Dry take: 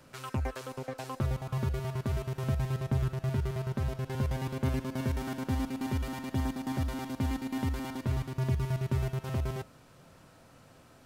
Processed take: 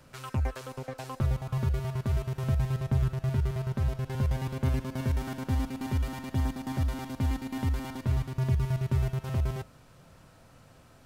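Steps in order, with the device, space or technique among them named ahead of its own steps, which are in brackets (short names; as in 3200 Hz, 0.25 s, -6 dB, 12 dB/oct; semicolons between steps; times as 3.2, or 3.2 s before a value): low shelf boost with a cut just above (low shelf 100 Hz +7.5 dB; bell 310 Hz -2.5 dB 0.98 oct)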